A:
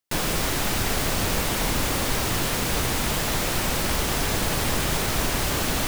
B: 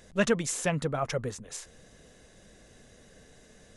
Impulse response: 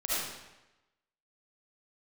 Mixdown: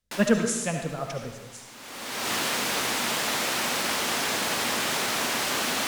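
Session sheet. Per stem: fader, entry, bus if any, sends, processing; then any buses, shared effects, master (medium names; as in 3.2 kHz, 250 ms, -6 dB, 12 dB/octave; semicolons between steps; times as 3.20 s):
0.0 dB, 0.00 s, no send, frequency weighting A; auto duck -22 dB, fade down 0.40 s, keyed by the second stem
-7.5 dB, 0.00 s, send -9 dB, three bands expanded up and down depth 100%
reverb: on, RT60 1.0 s, pre-delay 30 ms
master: peaking EQ 230 Hz +7 dB 0.39 oct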